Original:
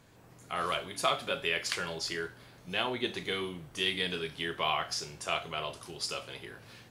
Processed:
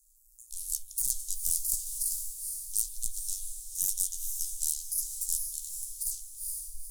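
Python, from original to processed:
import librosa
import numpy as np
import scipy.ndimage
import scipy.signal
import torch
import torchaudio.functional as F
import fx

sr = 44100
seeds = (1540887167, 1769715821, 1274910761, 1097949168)

y = fx.tape_stop_end(x, sr, length_s=0.87)
y = fx.low_shelf(y, sr, hz=300.0, db=11.5)
y = fx.cheby_harmonics(y, sr, harmonics=(8,), levels_db=(-7,), full_scale_db=-13.0)
y = scipy.signal.sosfilt(scipy.signal.cheby2(4, 70, [120.0, 2000.0], 'bandstop', fs=sr, output='sos'), y)
y = fx.high_shelf(y, sr, hz=2500.0, db=9.0)
y = fx.doubler(y, sr, ms=17.0, db=-12.0)
y = fx.echo_diffused(y, sr, ms=468, feedback_pct=42, wet_db=-8)
y = fx.over_compress(y, sr, threshold_db=-27.0, ratio=-0.5)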